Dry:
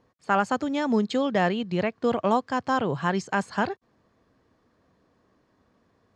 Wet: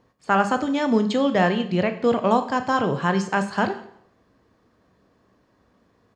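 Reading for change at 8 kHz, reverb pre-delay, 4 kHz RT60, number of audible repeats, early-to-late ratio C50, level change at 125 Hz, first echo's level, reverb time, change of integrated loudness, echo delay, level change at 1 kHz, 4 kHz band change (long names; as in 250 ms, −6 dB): +3.5 dB, 13 ms, 0.60 s, 1, 12.0 dB, +4.5 dB, −24.0 dB, 0.70 s, +4.0 dB, 174 ms, +3.5 dB, +4.0 dB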